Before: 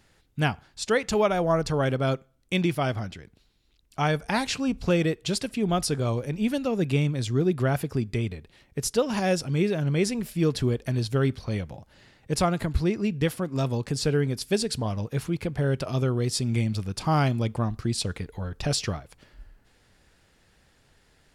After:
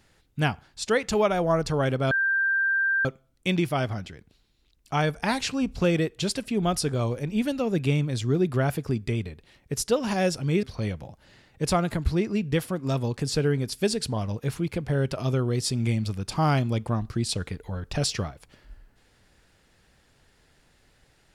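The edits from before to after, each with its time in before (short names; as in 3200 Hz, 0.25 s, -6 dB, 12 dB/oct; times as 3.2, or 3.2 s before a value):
2.11 add tone 1580 Hz -20.5 dBFS 0.94 s
9.69–11.32 cut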